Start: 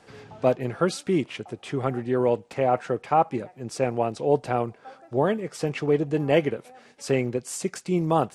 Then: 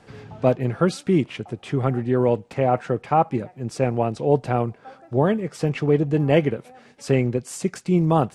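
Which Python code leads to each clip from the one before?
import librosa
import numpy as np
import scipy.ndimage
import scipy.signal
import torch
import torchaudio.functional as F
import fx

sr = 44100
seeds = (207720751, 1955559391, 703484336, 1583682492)

y = fx.bass_treble(x, sr, bass_db=7, treble_db=-3)
y = y * 10.0 ** (1.5 / 20.0)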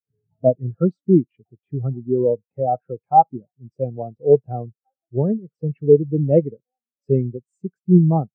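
y = fx.spectral_expand(x, sr, expansion=2.5)
y = y * 10.0 ** (2.5 / 20.0)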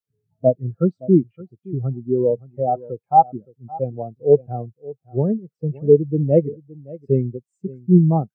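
y = x + 10.0 ** (-20.0 / 20.0) * np.pad(x, (int(568 * sr / 1000.0), 0))[:len(x)]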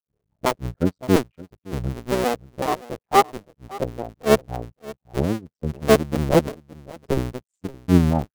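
y = fx.cycle_switch(x, sr, every=2, mode='muted')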